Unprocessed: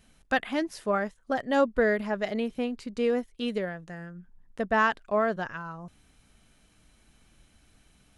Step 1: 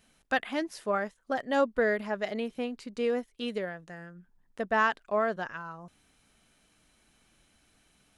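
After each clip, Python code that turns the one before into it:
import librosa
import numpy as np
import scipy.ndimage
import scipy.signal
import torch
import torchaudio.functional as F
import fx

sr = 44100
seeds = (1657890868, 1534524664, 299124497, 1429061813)

y = fx.low_shelf(x, sr, hz=150.0, db=-10.5)
y = y * librosa.db_to_amplitude(-1.5)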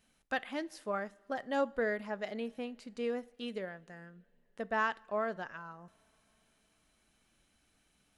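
y = fx.rev_double_slope(x, sr, seeds[0], early_s=0.44, late_s=4.0, knee_db=-20, drr_db=18.0)
y = y * librosa.db_to_amplitude(-6.5)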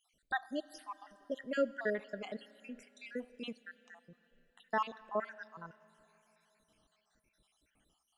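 y = fx.spec_dropout(x, sr, seeds[1], share_pct=67)
y = fx.rev_schroeder(y, sr, rt60_s=3.6, comb_ms=28, drr_db=19.0)
y = y * librosa.db_to_amplitude(1.0)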